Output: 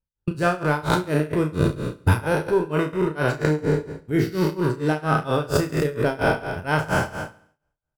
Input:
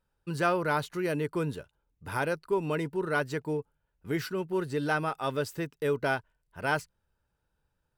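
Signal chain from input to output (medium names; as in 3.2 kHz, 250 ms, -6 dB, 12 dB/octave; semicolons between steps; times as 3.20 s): spectral sustain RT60 1.38 s; gate -43 dBFS, range -29 dB; bass shelf 310 Hz +12 dB; in parallel at +2.5 dB: compressor with a negative ratio -28 dBFS, ratio -0.5; on the sum: transient shaper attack +5 dB, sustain +1 dB; tremolo 4.3 Hz, depth 98%; doubling 33 ms -8 dB; on a send: feedback delay 70 ms, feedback 52%, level -19 dB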